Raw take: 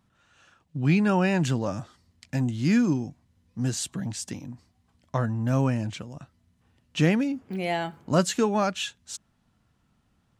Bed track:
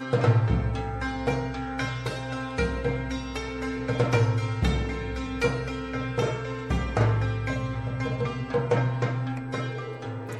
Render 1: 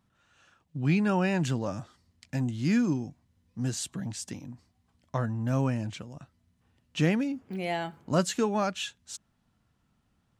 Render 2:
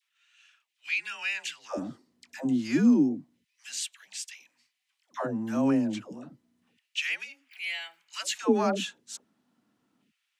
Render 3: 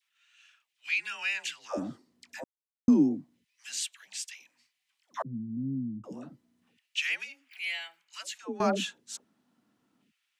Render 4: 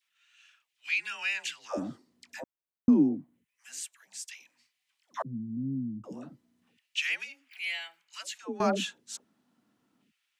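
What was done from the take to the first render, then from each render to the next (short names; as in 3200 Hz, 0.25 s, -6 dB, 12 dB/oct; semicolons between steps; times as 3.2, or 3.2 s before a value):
gain -3.5 dB
LFO high-pass square 0.3 Hz 270–2400 Hz; dispersion lows, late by 0.121 s, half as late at 590 Hz
2.44–2.88 mute; 5.22–6.04 inverse Chebyshev low-pass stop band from 710 Hz, stop band 60 dB; 7.66–8.6 fade out, to -19.5 dB
2.41–4.27 bell 8700 Hz -> 2700 Hz -13.5 dB 1.4 oct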